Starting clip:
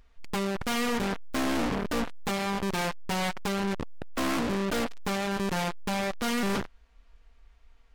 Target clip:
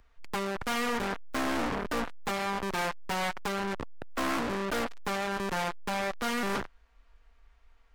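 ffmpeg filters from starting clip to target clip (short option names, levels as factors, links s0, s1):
-filter_complex "[0:a]equalizer=f=180:t=o:w=0.72:g=-3.5,acrossover=split=150|1700|6500[s0][s1][s2][s3];[s1]crystalizer=i=9.5:c=0[s4];[s0][s4][s2][s3]amix=inputs=4:normalize=0,volume=0.668"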